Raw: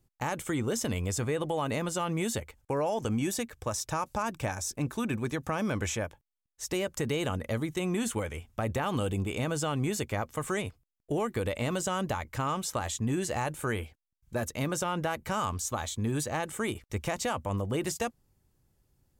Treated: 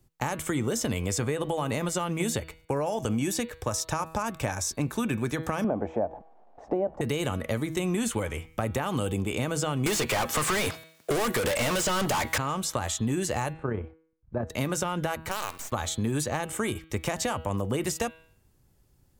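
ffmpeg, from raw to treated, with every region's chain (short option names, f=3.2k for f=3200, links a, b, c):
-filter_complex "[0:a]asettb=1/sr,asplit=3[a][b][c];[a]atrim=end=5.644[d];[b]atrim=start=5.64:end=7.01,asetpts=PTS-STARTPTS,afade=t=in:d=0.004:c=qsin,afade=t=out:st=1.366:d=0.004:c=qsin,aeval=exprs='val(0)+0.5*0.00631*sgn(val(0))':c=same,lowpass=f=730:t=q:w=5.9,lowshelf=f=160:t=q:w=1.5:g=-10.5[e];[c]atrim=start=7.006[f];[d][e]acrossfade=d=0.004:c1=hsin:c2=qsin[g];[g][f]acrossfade=d=0.004:c1=qsin:c2=hsin,asettb=1/sr,asplit=3[h][i][j];[h]atrim=end=9.864[k];[i]atrim=start=9.86:end=12.38,asetpts=PTS-STARTPTS,afade=t=in:d=0.004:c=qsin,afade=t=out:st=2.516:d=0.004:c=qsin,highpass=89,asplit=2[l][m];[m]highpass=f=720:p=1,volume=35dB,asoftclip=type=tanh:threshold=-18dB[n];[l][n]amix=inputs=2:normalize=0,lowpass=f=7.9k:p=1,volume=-6dB[o];[j]atrim=start=12.376[p];[k][o]acrossfade=d=0.004:c1=hsin:c2=qsin[q];[q][p]acrossfade=d=0.004:c1=qsin:c2=hsin,asettb=1/sr,asplit=3[r][s][t];[r]atrim=end=13.534[u];[s]atrim=start=13.53:end=14.5,asetpts=PTS-STARTPTS,afade=t=in:d=0.004:c=qsin,afade=t=out:st=0.966:d=0.004:c=qsin,lowpass=1k,tremolo=f=32:d=0.462[v];[t]atrim=start=14.496[w];[u][v]acrossfade=d=0.004:c1=hsin:c2=qsin[x];[x][w]acrossfade=d=0.004:c1=qsin:c2=hsin,asettb=1/sr,asplit=3[y][z][aa];[y]atrim=end=15.294[ab];[z]atrim=start=15.29:end=15.72,asetpts=PTS-STARTPTS,afade=t=in:d=0.004:c=qsin,afade=t=out:st=0.426:d=0.004:c=qsin,highpass=410,acrossover=split=2100|7300[ac][ad][ae];[ac]acompressor=threshold=-34dB:ratio=4[af];[ad]acompressor=threshold=-49dB:ratio=4[ag];[ae]acompressor=threshold=-43dB:ratio=4[ah];[af][ag][ah]amix=inputs=3:normalize=0,acrusher=bits=6:dc=4:mix=0:aa=0.000001[ai];[aa]atrim=start=15.716[aj];[ab][ai]acrossfade=d=0.004:c1=hsin:c2=qsin[ak];[ak][aj]acrossfade=d=0.004:c1=qsin:c2=hsin,bandreject=f=161:t=h:w=4,bandreject=f=322:t=h:w=4,bandreject=f=483:t=h:w=4,bandreject=f=644:t=h:w=4,bandreject=f=805:t=h:w=4,bandreject=f=966:t=h:w=4,bandreject=f=1.127k:t=h:w=4,bandreject=f=1.288k:t=h:w=4,bandreject=f=1.449k:t=h:w=4,bandreject=f=1.61k:t=h:w=4,bandreject=f=1.771k:t=h:w=4,bandreject=f=1.932k:t=h:w=4,bandreject=f=2.093k:t=h:w=4,bandreject=f=2.254k:t=h:w=4,bandreject=f=2.415k:t=h:w=4,bandreject=f=2.576k:t=h:w=4,bandreject=f=2.737k:t=h:w=4,bandreject=f=2.898k:t=h:w=4,bandreject=f=3.059k:t=h:w=4,bandreject=f=3.22k:t=h:w=4,bandreject=f=3.381k:t=h:w=4,bandreject=f=3.542k:t=h:w=4,bandreject=f=3.703k:t=h:w=4,bandreject=f=3.864k:t=h:w=4,bandreject=f=4.025k:t=h:w=4,bandreject=f=4.186k:t=h:w=4,bandreject=f=4.347k:t=h:w=4,bandreject=f=4.508k:t=h:w=4,acrossover=split=140|6900[al][am][an];[al]acompressor=threshold=-41dB:ratio=4[ao];[am]acompressor=threshold=-32dB:ratio=4[ap];[an]acompressor=threshold=-41dB:ratio=4[aq];[ao][ap][aq]amix=inputs=3:normalize=0,volume=6dB"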